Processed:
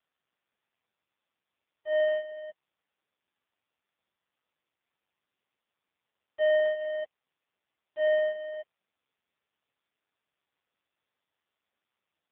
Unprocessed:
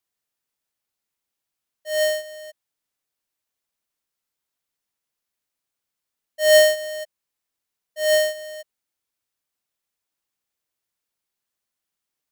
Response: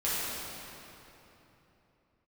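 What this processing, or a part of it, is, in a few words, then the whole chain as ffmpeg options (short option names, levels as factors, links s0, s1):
voicemail: -af "highpass=330,lowpass=2900,acompressor=threshold=0.0891:ratio=6" -ar 8000 -c:a libopencore_amrnb -b:a 5150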